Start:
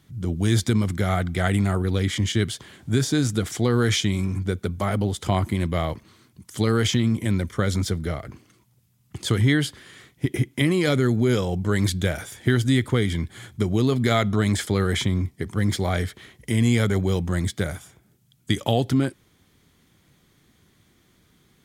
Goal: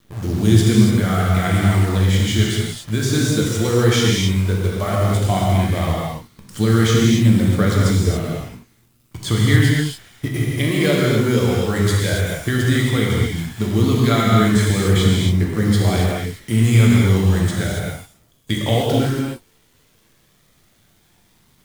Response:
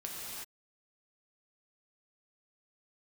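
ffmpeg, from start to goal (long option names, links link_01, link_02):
-filter_complex "[0:a]acrusher=bits=7:dc=4:mix=0:aa=0.000001,aphaser=in_gain=1:out_gain=1:delay=2.3:decay=0.28:speed=0.13:type=triangular[link_01];[1:a]atrim=start_sample=2205,afade=type=out:start_time=0.34:duration=0.01,atrim=end_sample=15435[link_02];[link_01][link_02]afir=irnorm=-1:irlink=0,volume=4.5dB"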